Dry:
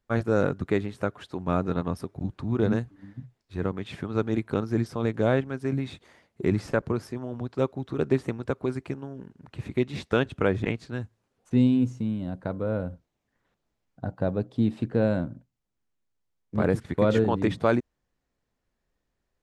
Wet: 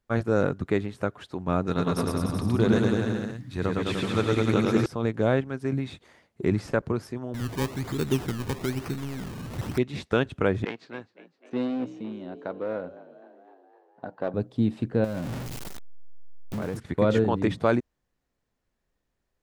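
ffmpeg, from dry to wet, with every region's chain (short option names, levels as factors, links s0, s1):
-filter_complex "[0:a]asettb=1/sr,asplit=3[s0][s1][s2];[s0]atrim=end=1.674[s3];[s1]atrim=start=1.67:end=4.86,asetpts=PTS-STARTPTS,afade=t=in:d=0.004:c=qsin,afade=t=out:st=3.186:d=0.004:c=qsin,highshelf=f=2400:g=10.5,aecho=1:1:110|209|298.1|378.3|450.5|515.4|573.9:0.794|0.631|0.501|0.398|0.316|0.251|0.2,atrim=end_sample=140679[s4];[s2]atrim=start=4.856[s5];[s3][s4]acrossfade=d=0.004:c1=hsin:c2=qsin[s6];[s6][s5]acrossfade=d=0.004:c1=qsin:c2=hsin,asettb=1/sr,asplit=3[s7][s8][s9];[s7]atrim=end=7.344[s10];[s8]atrim=start=7.34:end=9.78,asetpts=PTS-STARTPTS,afade=t=in:d=0.004:c=qsin,afade=t=out:st=2.436:d=0.004:c=qsin,aeval=exprs='val(0)+0.5*0.0299*sgn(val(0))':c=same,equalizer=f=670:w=1.5:g=-14,acrusher=samples=22:mix=1:aa=0.000001:lfo=1:lforange=22:lforate=1.1[s11];[s9]atrim=start=9.776[s12];[s10][s11]acrossfade=d=0.004:c1=hsin:c2=qsin[s13];[s13][s12]acrossfade=d=0.004:c1=qsin:c2=hsin,asettb=1/sr,asplit=3[s14][s15][s16];[s14]atrim=end=10.654[s17];[s15]atrim=start=10.65:end=14.34,asetpts=PTS-STARTPTS,afade=t=in:d=0.004:c=qsin,afade=t=out:st=3.686:d=0.004:c=qsin,asplit=7[s18][s19][s20][s21][s22][s23][s24];[s19]adelay=255,afreqshift=61,volume=0.112[s25];[s20]adelay=510,afreqshift=122,volume=0.0708[s26];[s21]adelay=765,afreqshift=183,volume=0.0447[s27];[s22]adelay=1020,afreqshift=244,volume=0.0282[s28];[s23]adelay=1275,afreqshift=305,volume=0.0176[s29];[s24]adelay=1530,afreqshift=366,volume=0.0111[s30];[s18][s25][s26][s27][s28][s29][s30]amix=inputs=7:normalize=0,atrim=end_sample=162729,aeval=exprs='clip(val(0),-1,0.0631)':c=same,highpass=320,lowpass=4100[s31];[s16]atrim=start=14.336[s32];[s17][s31]acrossfade=d=0.004:c1=hsin:c2=qsin[s33];[s33][s32]acrossfade=d=0.004:c1=qsin:c2=hsin,asettb=1/sr,asplit=3[s34][s35][s36];[s34]atrim=end=15.044[s37];[s35]atrim=start=15.04:end=16.77,asetpts=PTS-STARTPTS,afade=t=in:d=0.004:c=qsin,afade=t=out:st=1.726:d=0.004:c=qsin,aeval=exprs='val(0)+0.5*0.0376*sgn(val(0))':c=same,acompressor=threshold=0.0398:ratio=4:attack=3.2:release=140:knee=1:detection=peak[s38];[s36]atrim=start=16.766[s39];[s37][s38]acrossfade=d=0.004:c1=hsin:c2=qsin[s40];[s40][s39]acrossfade=d=0.004:c1=qsin:c2=hsin"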